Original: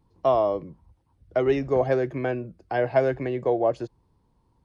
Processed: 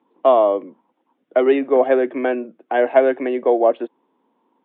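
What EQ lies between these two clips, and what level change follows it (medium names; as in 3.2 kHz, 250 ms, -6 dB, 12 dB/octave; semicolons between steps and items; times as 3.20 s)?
elliptic high-pass 240 Hz, stop band 70 dB; steep low-pass 3.6 kHz 96 dB/octave; +7.5 dB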